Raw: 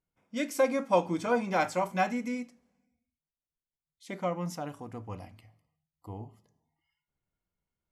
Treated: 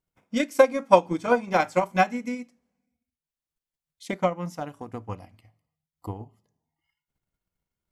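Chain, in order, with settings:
transient designer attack +10 dB, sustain −5 dB
level +1 dB

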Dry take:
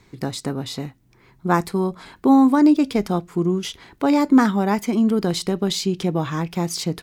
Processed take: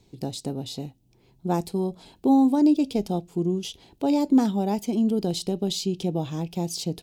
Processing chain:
flat-topped bell 1,500 Hz −14.5 dB 1.3 octaves
level −4.5 dB

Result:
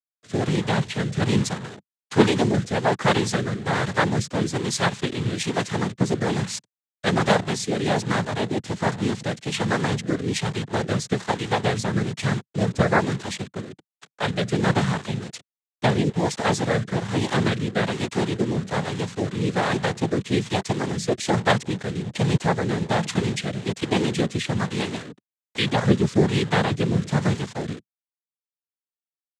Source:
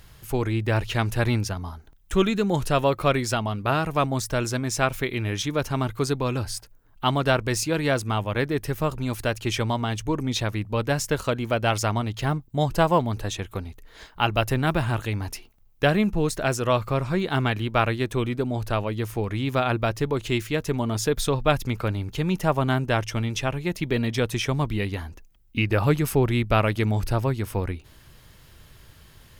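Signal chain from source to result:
bit-depth reduction 6 bits, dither none
cochlear-implant simulation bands 6
rotating-speaker cabinet horn 1.2 Hz
level +3.5 dB

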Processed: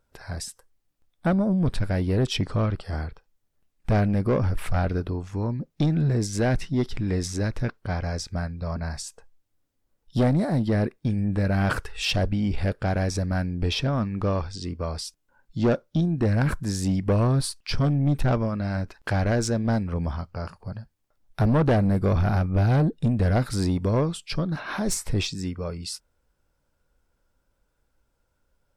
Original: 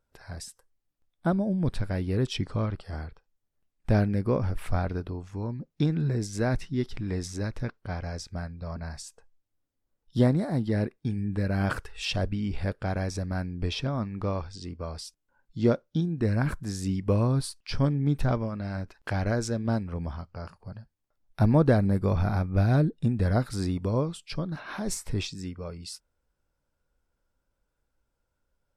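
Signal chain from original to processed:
soft clipping −22.5 dBFS, distortion −11 dB
level +6.5 dB

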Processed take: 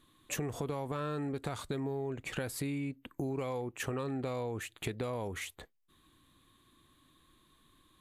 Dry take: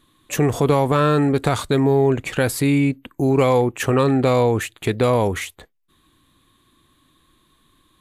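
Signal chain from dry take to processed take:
downward compressor 6 to 1, threshold −28 dBFS, peak gain reduction 14.5 dB
level −6.5 dB

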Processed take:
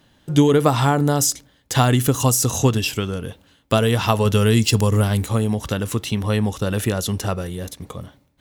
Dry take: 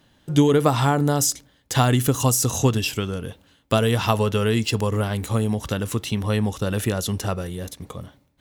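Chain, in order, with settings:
0:04.25–0:05.23: bass and treble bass +5 dB, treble +7 dB
level +2 dB

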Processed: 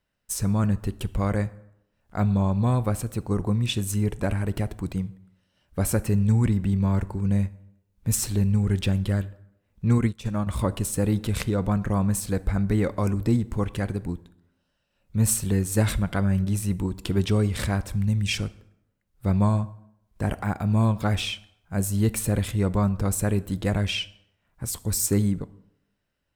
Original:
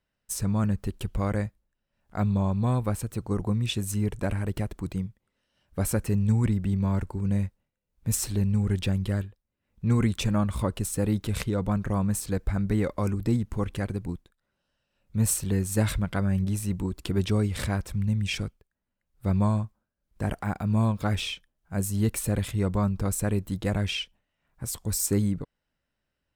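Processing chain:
0:17.91–0:18.36: bass and treble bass 0 dB, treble +4 dB
dense smooth reverb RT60 0.82 s, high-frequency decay 0.65×, DRR 16 dB
0:09.98–0:10.47: expander for the loud parts 2.5 to 1, over −34 dBFS
level +2.5 dB

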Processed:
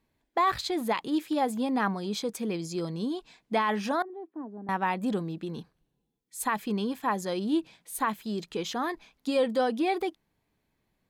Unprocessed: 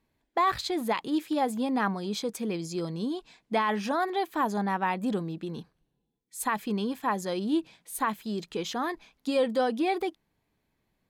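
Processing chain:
0:04.02–0:04.69: four-pole ladder band-pass 310 Hz, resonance 55%

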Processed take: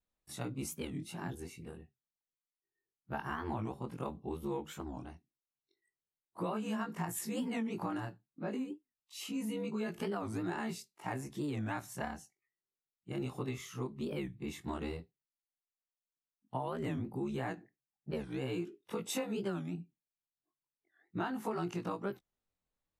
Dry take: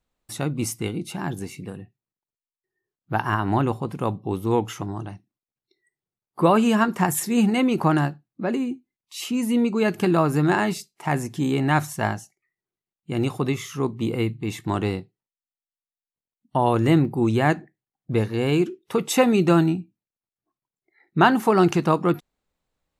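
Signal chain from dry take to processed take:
every overlapping window played backwards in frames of 46 ms
downward compressor 6 to 1, threshold −25 dBFS, peak gain reduction 11.5 dB
wow of a warped record 45 rpm, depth 250 cents
level −8.5 dB

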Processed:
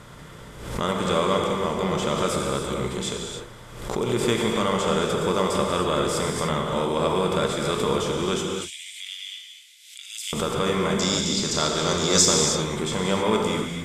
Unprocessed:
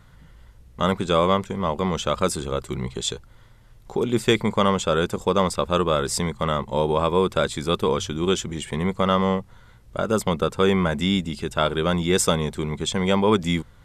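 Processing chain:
compressor on every frequency bin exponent 0.6
0:08.38–0:10.33: Butterworth high-pass 2,300 Hz 48 dB per octave
0:10.99–0:12.46: flat-topped bell 5,400 Hz +16 dB 1.1 octaves
reverb whose tail is shaped and stops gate 330 ms flat, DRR 0 dB
background raised ahead of every attack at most 63 dB per second
level −8.5 dB

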